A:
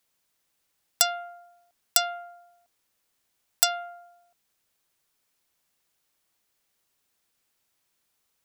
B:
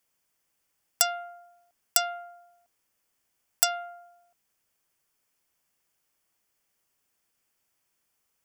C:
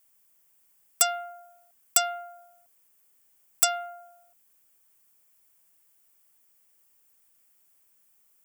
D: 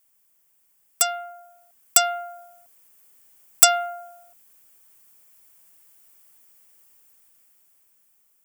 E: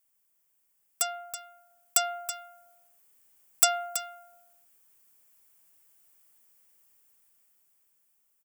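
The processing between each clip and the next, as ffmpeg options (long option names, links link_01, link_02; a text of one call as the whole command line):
ffmpeg -i in.wav -af "equalizer=frequency=3900:width_type=o:width=0.23:gain=-11.5,volume=-1dB" out.wav
ffmpeg -i in.wav -af "aexciter=amount=2.1:drive=7.1:freq=7500,volume=14.5dB,asoftclip=hard,volume=-14.5dB,volume=2dB" out.wav
ffmpeg -i in.wav -af "dynaudnorm=framelen=770:gausssize=5:maxgain=9.5dB" out.wav
ffmpeg -i in.wav -af "aecho=1:1:327:0.282,volume=-8dB" out.wav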